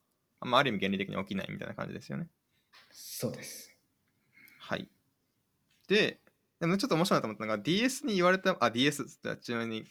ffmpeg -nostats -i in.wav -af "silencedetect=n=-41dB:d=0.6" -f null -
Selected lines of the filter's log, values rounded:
silence_start: 2.24
silence_end: 2.98 | silence_duration: 0.74
silence_start: 3.62
silence_end: 4.48 | silence_duration: 0.86
silence_start: 4.84
silence_end: 5.89 | silence_duration: 1.05